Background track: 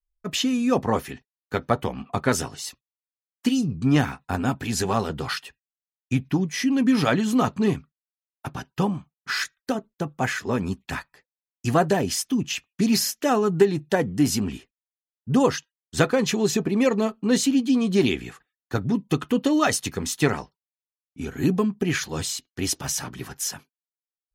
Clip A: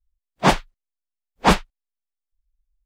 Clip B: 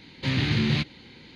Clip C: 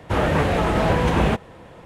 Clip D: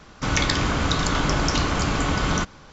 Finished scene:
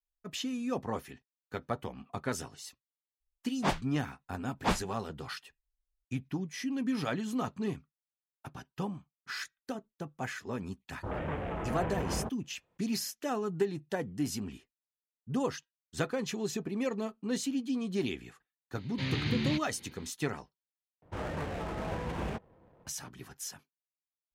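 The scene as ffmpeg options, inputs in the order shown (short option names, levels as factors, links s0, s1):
-filter_complex "[3:a]asplit=2[s0][s1];[0:a]volume=0.237[s2];[s0]afwtdn=0.0501[s3];[s1]adynamicsmooth=sensitivity=5.5:basefreq=750[s4];[s2]asplit=2[s5][s6];[s5]atrim=end=21.024[s7];[s4]atrim=end=1.85,asetpts=PTS-STARTPTS,volume=0.141[s8];[s6]atrim=start=22.866[s9];[1:a]atrim=end=2.85,asetpts=PTS-STARTPTS,volume=0.2,afade=t=in:d=0.004:c=hsin,afade=t=out:st=2.846:d=0.004:c=hsin,adelay=3200[s10];[s3]atrim=end=1.85,asetpts=PTS-STARTPTS,volume=0.158,afade=t=in:d=0.004:c=hsin,afade=t=out:st=1.846:d=0.004:c=hsin,adelay=10930[s11];[2:a]atrim=end=1.35,asetpts=PTS-STARTPTS,volume=0.398,afade=t=in:d=0.004:c=hsin,afade=t=out:st=1.346:d=0.004:c=hsin,adelay=18750[s12];[s7][s8]acrossfade=d=0.004:c1=hsin:c2=hsin[s13];[s13][s9]acrossfade=d=0.004:c1=hsin:c2=hsin[s14];[s14][s10][s11][s12]amix=inputs=4:normalize=0"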